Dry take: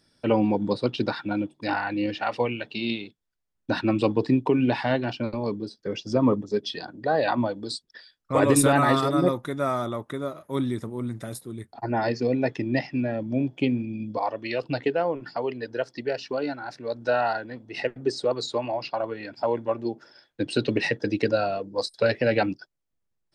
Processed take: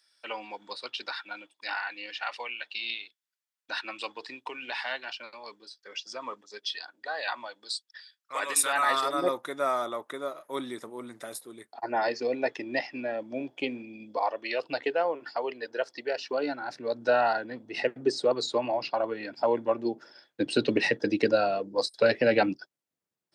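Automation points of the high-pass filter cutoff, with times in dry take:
0:08.62 1,400 Hz
0:09.31 490 Hz
0:16.15 490 Hz
0:16.71 190 Hz

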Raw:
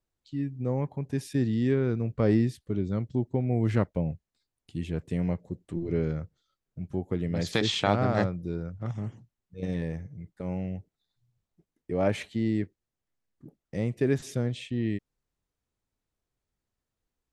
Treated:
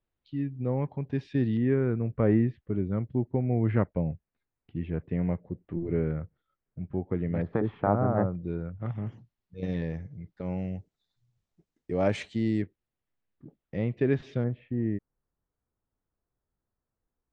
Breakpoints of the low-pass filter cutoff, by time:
low-pass filter 24 dB per octave
3,600 Hz
from 0:01.57 2,300 Hz
from 0:07.42 1,300 Hz
from 0:08.35 3,000 Hz
from 0:09.07 5,000 Hz
from 0:10.58 7,700 Hz
from 0:12.62 3,500 Hz
from 0:14.44 1,600 Hz

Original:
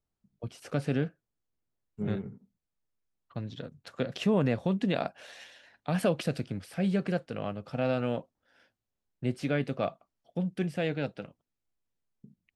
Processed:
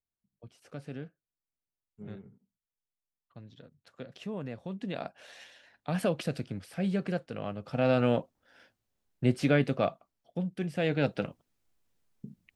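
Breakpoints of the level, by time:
0:04.56 −12 dB
0:05.35 −2 dB
0:07.45 −2 dB
0:08.03 +5 dB
0:09.49 +5 dB
0:10.61 −3 dB
0:11.23 +9 dB

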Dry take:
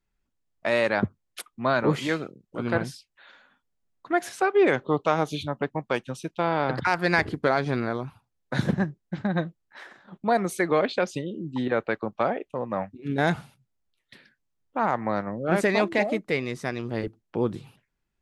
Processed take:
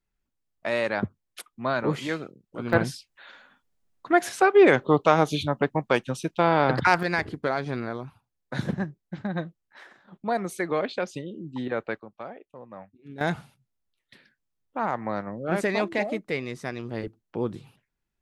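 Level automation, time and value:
−3 dB
from 0:02.73 +4 dB
from 0:07.03 −4 dB
from 0:12.00 −14 dB
from 0:13.21 −3 dB

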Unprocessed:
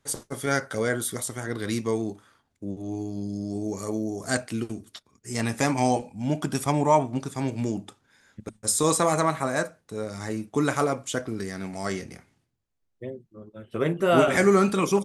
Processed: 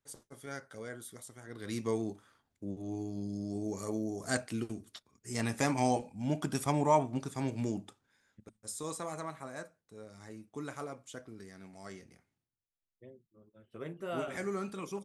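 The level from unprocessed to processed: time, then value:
0:01.43 −18 dB
0:01.85 −6.5 dB
0:07.76 −6.5 dB
0:08.56 −17.5 dB

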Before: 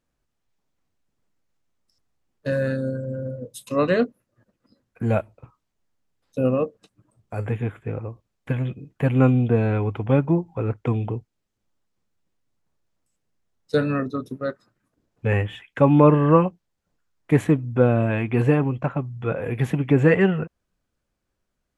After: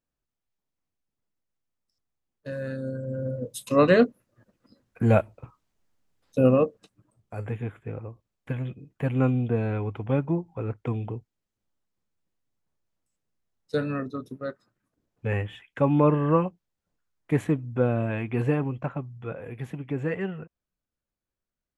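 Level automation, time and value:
0:02.55 −10.5 dB
0:03.41 +2 dB
0:06.56 +2 dB
0:07.34 −6 dB
0:18.91 −6 dB
0:19.60 −12.5 dB

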